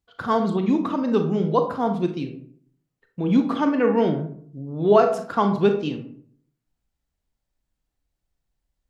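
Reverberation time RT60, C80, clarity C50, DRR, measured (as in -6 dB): 0.55 s, 13.0 dB, 9.0 dB, 5.5 dB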